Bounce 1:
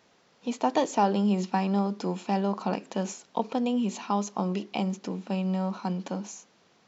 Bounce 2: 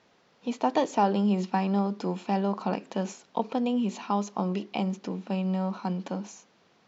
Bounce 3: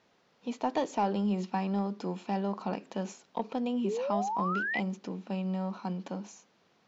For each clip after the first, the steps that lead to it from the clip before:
Bessel low-pass 5.1 kHz
saturation -12 dBFS, distortion -26 dB; painted sound rise, 3.84–4.80 s, 370–2100 Hz -28 dBFS; trim -4.5 dB

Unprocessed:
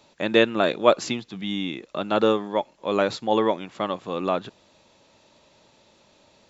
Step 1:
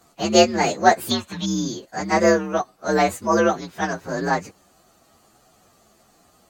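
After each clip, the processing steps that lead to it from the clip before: frequency axis rescaled in octaves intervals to 123%; time-frequency box 1.11–1.46 s, 570–4400 Hz +12 dB; trim +5.5 dB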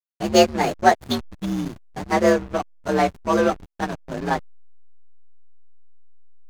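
hysteresis with a dead band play -19 dBFS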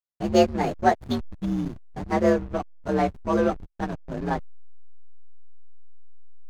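tilt EQ -2 dB/octave; trim -5.5 dB

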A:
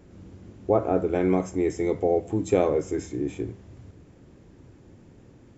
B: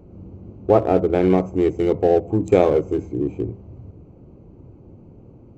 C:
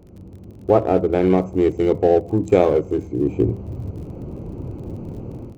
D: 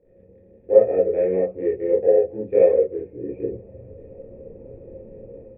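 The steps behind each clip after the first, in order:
local Wiener filter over 25 samples; peaking EQ 270 Hz -2.5 dB 0.41 oct; trim +7 dB
level rider gain up to 14.5 dB; crackle 41 per s -38 dBFS; trim -1 dB
cascade formant filter e; reverberation, pre-delay 23 ms, DRR -5.5 dB; trim -3.5 dB

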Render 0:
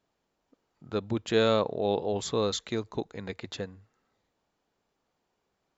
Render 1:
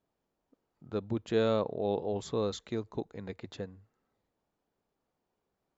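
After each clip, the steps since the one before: tilt shelf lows +4 dB, about 1.2 kHz; trim -6.5 dB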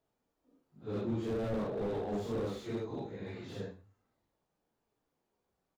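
phase randomisation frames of 200 ms; delay 112 ms -20 dB; slew-rate limiter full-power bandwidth 10 Hz

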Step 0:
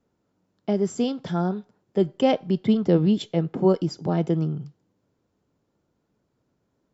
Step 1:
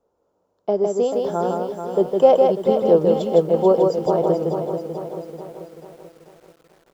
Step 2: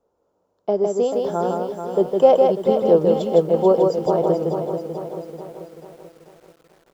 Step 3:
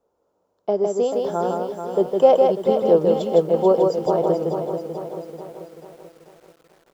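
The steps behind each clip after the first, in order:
graphic EQ 125/250/500/1000/2000/4000 Hz -8/-7/+11/+7/-9/-3 dB; delay 158 ms -3.5 dB; bit-crushed delay 437 ms, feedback 55%, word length 8-bit, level -7.5 dB; trim -1 dB
no audible change
bass shelf 250 Hz -3.5 dB

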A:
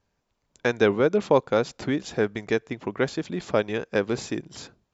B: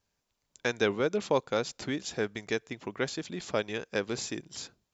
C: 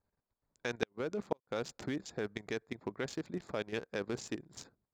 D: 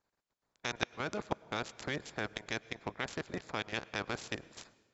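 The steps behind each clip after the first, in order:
treble shelf 2.7 kHz +11.5 dB; trim -8 dB
local Wiener filter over 15 samples; level held to a coarse grid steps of 12 dB; inverted gate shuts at -20 dBFS, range -41 dB; trim +1 dB
spectral peaks clipped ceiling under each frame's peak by 18 dB; brick-wall FIR low-pass 7.7 kHz; reverberation RT60 1.7 s, pre-delay 95 ms, DRR 20.5 dB

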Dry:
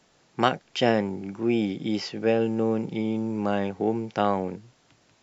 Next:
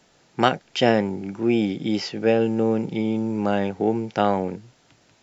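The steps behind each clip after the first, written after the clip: band-stop 1.1 kHz, Q 14; trim +3.5 dB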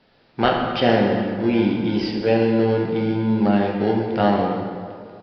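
in parallel at -11.5 dB: sample-and-hold 36×; on the sum: plate-style reverb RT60 2.1 s, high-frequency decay 0.65×, DRR -1 dB; resampled via 11.025 kHz; trim -2 dB

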